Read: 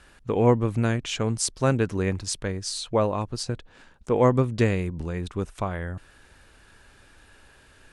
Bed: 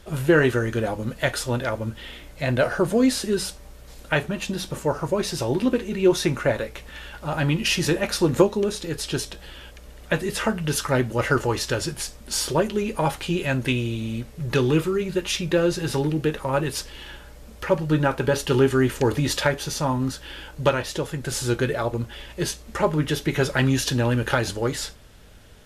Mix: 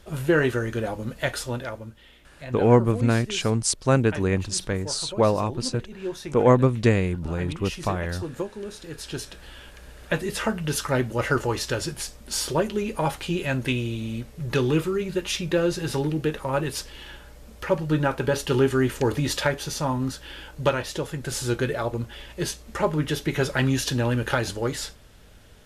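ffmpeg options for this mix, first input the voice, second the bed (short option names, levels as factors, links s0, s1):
-filter_complex "[0:a]adelay=2250,volume=1.33[s0];[1:a]volume=2.66,afade=t=out:st=1.37:d=0.59:silence=0.298538,afade=t=in:st=8.55:d=1.3:silence=0.266073[s1];[s0][s1]amix=inputs=2:normalize=0"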